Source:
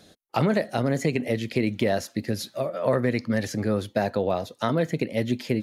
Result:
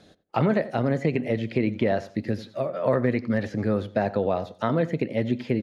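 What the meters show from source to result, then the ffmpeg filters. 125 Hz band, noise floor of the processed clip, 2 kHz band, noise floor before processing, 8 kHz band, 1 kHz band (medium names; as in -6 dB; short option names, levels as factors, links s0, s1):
+0.5 dB, -55 dBFS, -1.5 dB, -61 dBFS, under -15 dB, 0.0 dB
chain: -filter_complex "[0:a]aemphasis=mode=reproduction:type=50fm,asplit=2[s0][s1];[s1]adelay=89,lowpass=f=1600:p=1,volume=0.168,asplit=2[s2][s3];[s3]adelay=89,lowpass=f=1600:p=1,volume=0.25,asplit=2[s4][s5];[s5]adelay=89,lowpass=f=1600:p=1,volume=0.25[s6];[s0][s2][s4][s6]amix=inputs=4:normalize=0,acrossover=split=3700[s7][s8];[s8]acompressor=threshold=0.002:ratio=4:attack=1:release=60[s9];[s7][s9]amix=inputs=2:normalize=0"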